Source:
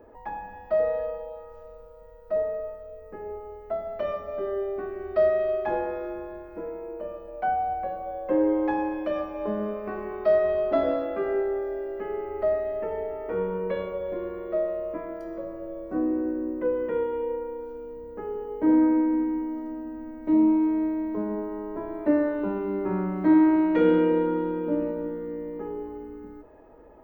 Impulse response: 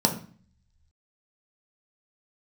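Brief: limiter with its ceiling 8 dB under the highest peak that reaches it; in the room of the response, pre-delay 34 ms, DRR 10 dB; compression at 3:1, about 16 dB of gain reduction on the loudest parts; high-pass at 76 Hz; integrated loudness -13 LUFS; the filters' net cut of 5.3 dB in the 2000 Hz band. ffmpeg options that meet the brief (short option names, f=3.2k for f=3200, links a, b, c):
-filter_complex "[0:a]highpass=76,equalizer=f=2k:t=o:g=-7,acompressor=threshold=-39dB:ratio=3,alimiter=level_in=9.5dB:limit=-24dB:level=0:latency=1,volume=-9.5dB,asplit=2[a][b];[1:a]atrim=start_sample=2205,adelay=34[c];[b][c]afir=irnorm=-1:irlink=0,volume=-23dB[d];[a][d]amix=inputs=2:normalize=0,volume=27.5dB"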